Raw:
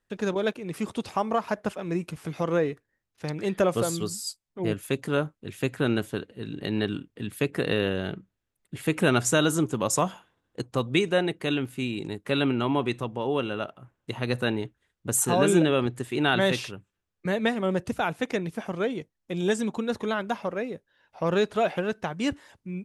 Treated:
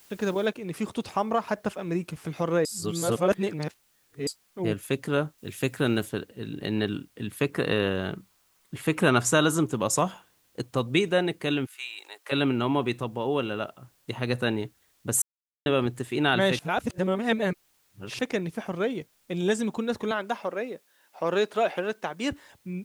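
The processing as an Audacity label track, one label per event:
0.460000	0.460000	noise floor step -56 dB -67 dB
2.650000	4.270000	reverse
5.380000	6.090000	high shelf 5000 Hz +7 dB
7.330000	9.630000	bell 1100 Hz +5.5 dB 0.62 oct
11.650000	12.310000	HPF 1200 Hz -> 530 Hz 24 dB/oct
15.220000	15.660000	mute
16.590000	18.190000	reverse
20.110000	22.310000	HPF 270 Hz

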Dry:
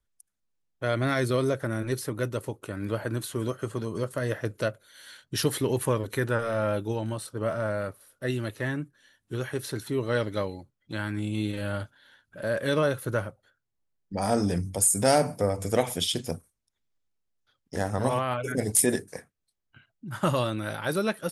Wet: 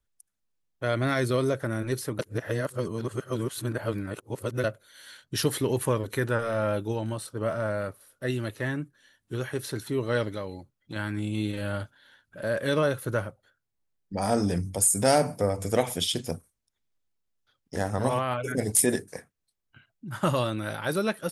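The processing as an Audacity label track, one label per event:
2.190000	4.640000	reverse
10.340000	10.960000	compressor 2:1, threshold -33 dBFS

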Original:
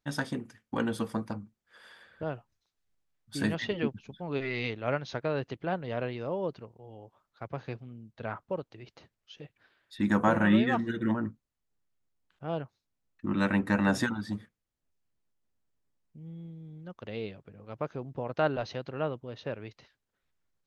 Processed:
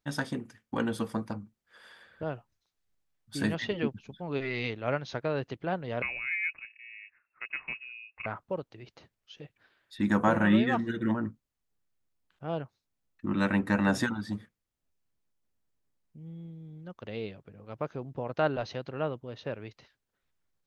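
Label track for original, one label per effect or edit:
6.020000	8.260000	inverted band carrier 2700 Hz

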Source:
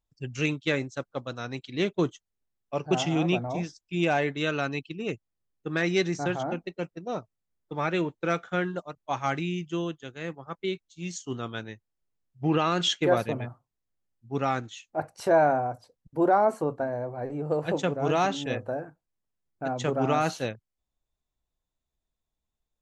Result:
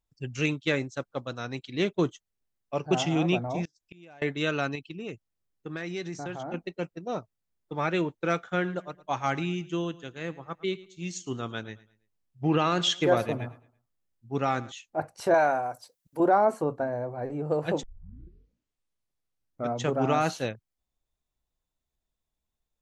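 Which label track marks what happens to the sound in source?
3.650000	4.220000	flipped gate shuts at -31 dBFS, range -26 dB
4.750000	6.540000	compressor 2.5:1, threshold -35 dBFS
8.430000	14.720000	feedback echo 0.11 s, feedback 33%, level -19 dB
15.340000	16.200000	tilt +3.5 dB/oct
17.830000	17.830000	tape start 2.03 s

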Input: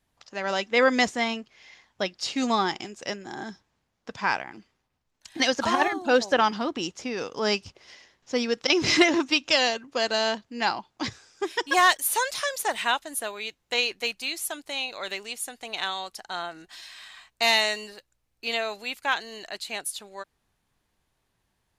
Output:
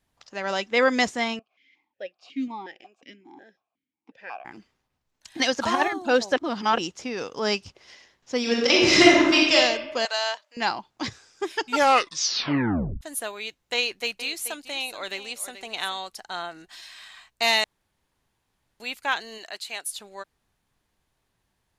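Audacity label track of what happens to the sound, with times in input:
1.390000	4.450000	vowel sequencer 5.5 Hz
6.360000	6.780000	reverse
8.400000	9.550000	reverb throw, RT60 1.1 s, DRR -4 dB
10.050000	10.570000	HPF 660 Hz 24 dB/oct
11.500000	11.500000	tape stop 1.51 s
13.760000	15.980000	echo 0.432 s -12.5 dB
17.640000	18.800000	room tone
19.370000	19.900000	HPF 360 Hz -> 990 Hz 6 dB/oct

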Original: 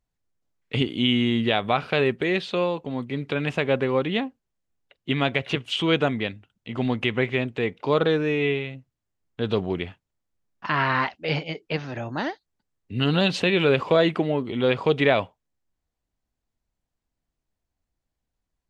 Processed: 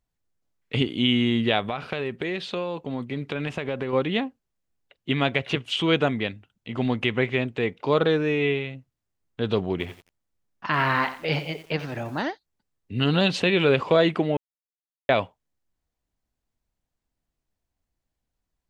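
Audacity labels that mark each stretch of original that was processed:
1.610000	3.930000	compressor, threshold -24 dBFS
9.710000	12.220000	lo-fi delay 89 ms, feedback 35%, word length 7-bit, level -13 dB
14.370000	15.090000	mute

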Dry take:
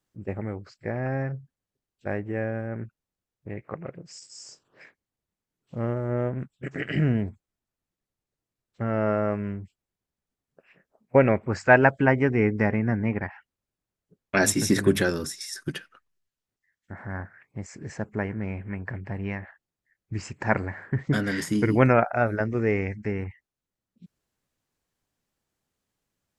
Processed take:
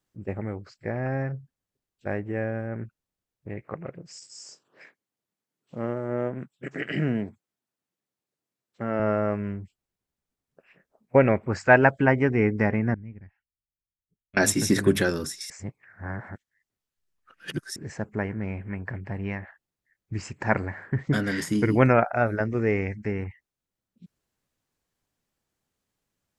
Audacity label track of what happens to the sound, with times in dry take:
4.400000	9.000000	HPF 170 Hz
12.940000	14.370000	passive tone stack bass-middle-treble 10-0-1
15.500000	17.760000	reverse

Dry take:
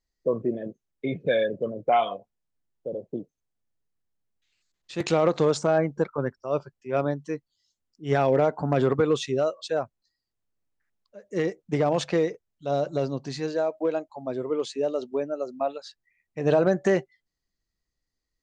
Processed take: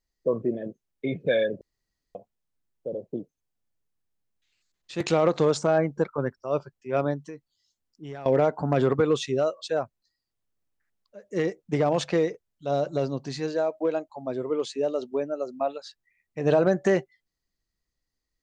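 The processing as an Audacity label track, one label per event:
1.610000	2.150000	room tone
7.250000	8.260000	compressor, threshold -35 dBFS

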